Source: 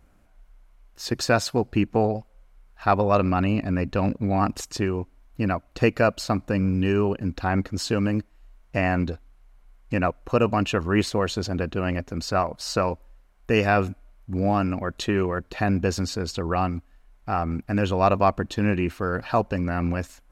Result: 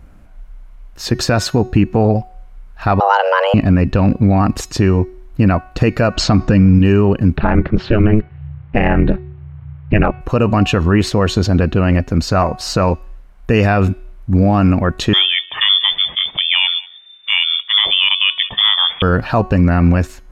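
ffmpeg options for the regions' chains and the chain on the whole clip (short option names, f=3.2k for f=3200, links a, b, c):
-filter_complex "[0:a]asettb=1/sr,asplit=3[a][b][c];[a]atrim=end=3.004[d];[b]atrim=start=3:end=3.54,asetpts=PTS-STARTPTS,afade=t=in:d=0.004:c=qsin,afade=t=out:st=0.536:d=0.004:c=qsin,highpass=f=220:w=0.5412,highpass=f=220:w=1.3066,afreqshift=290[e];[c]atrim=start=3.536[f];[d][e]acrossfade=d=0.004:c1=hsin:c2=qsin[g];[g][f]acrossfade=d=0.004:c1=qsin:c2=hsin,asettb=1/sr,asplit=3[h][i][j];[h]atrim=end=6.154[k];[i]atrim=start=6.15:end=6.79,asetpts=PTS-STARTPTS,afade=t=in:d=0.004:c=qsin,afade=t=out:st=0.636:d=0.004:c=qsin,lowpass=f=7k:w=0.5412,lowpass=f=7k:w=1.3066,acontrast=86,bandreject=f=560:w=10[l];[j]atrim=start=6.786[m];[k][l]acrossfade=d=0.004:c1=hsin:c2=qsin[n];[n][m]acrossfade=d=0.004:c1=qsin:c2=hsin,asettb=1/sr,asplit=3[o][p][q];[o]atrim=end=7.374[r];[p]atrim=start=7.37:end=10.21,asetpts=PTS-STARTPTS,afade=t=in:d=0.004:c=qsin,afade=t=out:st=2.836:d=0.004:c=qsin,lowpass=f=3k:w=0.5412,lowpass=f=3k:w=1.3066,acontrast=31,aeval=exprs='val(0)*sin(2*PI*110*n/s)':c=same[s];[q]atrim=start=10.206[t];[r][s]acrossfade=d=0.004:c1=hsin:c2=qsin[u];[u][t]acrossfade=d=0.004:c1=qsin:c2=hsin,asettb=1/sr,asplit=3[v][w][x];[v]atrim=end=15.134[y];[w]atrim=start=15.13:end=19.02,asetpts=PTS-STARTPTS,afade=t=in:d=0.004:c=qsin,afade=t=out:st=3.886:d=0.004:c=qsin,aecho=1:1:189:0.0708,atrim=end_sample=171549,lowpass=f=3.1k:t=q:w=0.5098,lowpass=f=3.1k:t=q:w=0.6013,lowpass=f=3.1k:t=q:w=0.9,lowpass=f=3.1k:t=q:w=2.563,afreqshift=-3600[z];[x]atrim=start=19.016[aa];[y][z]acrossfade=d=0.004:c1=hsin:c2=qsin[ab];[ab][aa]acrossfade=d=0.004:c1=qsin:c2=hsin,bass=f=250:g=6,treble=f=4k:g=-4,bandreject=f=370.3:t=h:w=4,bandreject=f=740.6:t=h:w=4,bandreject=f=1.1109k:t=h:w=4,bandreject=f=1.4812k:t=h:w=4,bandreject=f=1.8515k:t=h:w=4,bandreject=f=2.2218k:t=h:w=4,bandreject=f=2.5921k:t=h:w=4,bandreject=f=2.9624k:t=h:w=4,bandreject=f=3.3327k:t=h:w=4,bandreject=f=3.703k:t=h:w=4,bandreject=f=4.0733k:t=h:w=4,bandreject=f=4.4436k:t=h:w=4,bandreject=f=4.8139k:t=h:w=4,bandreject=f=5.1842k:t=h:w=4,bandreject=f=5.5545k:t=h:w=4,bandreject=f=5.9248k:t=h:w=4,bandreject=f=6.2951k:t=h:w=4,bandreject=f=6.6654k:t=h:w=4,alimiter=level_in=12dB:limit=-1dB:release=50:level=0:latency=1,volume=-1dB"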